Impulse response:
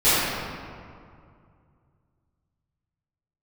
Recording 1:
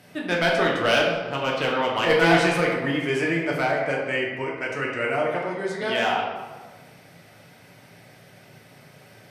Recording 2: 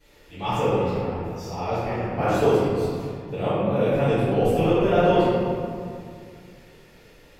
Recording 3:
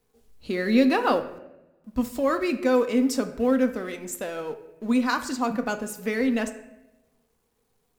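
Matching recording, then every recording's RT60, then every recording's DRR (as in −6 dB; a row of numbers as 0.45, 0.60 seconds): 2; 1.5, 2.3, 0.95 seconds; −3.0, −18.5, 8.0 decibels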